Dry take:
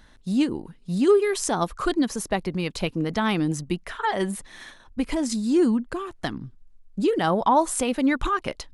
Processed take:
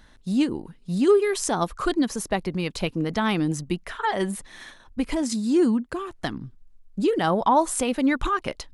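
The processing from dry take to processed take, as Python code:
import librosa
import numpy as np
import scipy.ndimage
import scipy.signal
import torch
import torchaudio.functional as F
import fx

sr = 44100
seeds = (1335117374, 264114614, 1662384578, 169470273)

y = fx.highpass(x, sr, hz=44.0, slope=12, at=(5.22, 5.99))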